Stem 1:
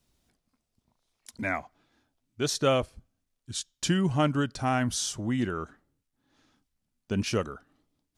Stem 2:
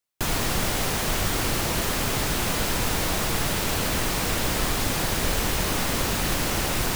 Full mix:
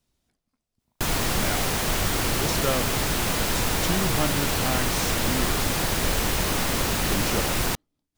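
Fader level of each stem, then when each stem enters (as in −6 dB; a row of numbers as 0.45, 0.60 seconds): −3.0, +0.5 decibels; 0.00, 0.80 seconds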